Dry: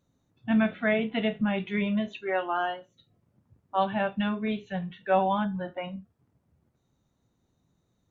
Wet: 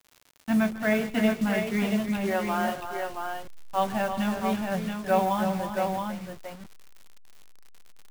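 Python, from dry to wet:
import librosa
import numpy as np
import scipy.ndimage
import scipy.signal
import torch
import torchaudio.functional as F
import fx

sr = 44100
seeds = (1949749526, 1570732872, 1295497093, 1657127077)

y = fx.delta_hold(x, sr, step_db=-35.5)
y = fx.echo_multitap(y, sr, ms=(142, 155, 323, 402, 674), db=(-19.0, -19.5, -8.5, -16.5, -5.0))
y = fx.dmg_crackle(y, sr, seeds[0], per_s=100.0, level_db=-39.0)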